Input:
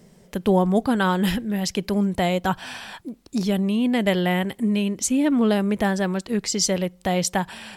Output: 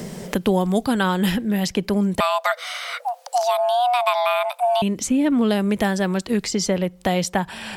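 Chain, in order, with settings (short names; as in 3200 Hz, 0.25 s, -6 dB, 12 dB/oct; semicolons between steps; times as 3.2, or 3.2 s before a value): 2.2–4.82 frequency shift +480 Hz; three-band squash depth 70%; gain +1 dB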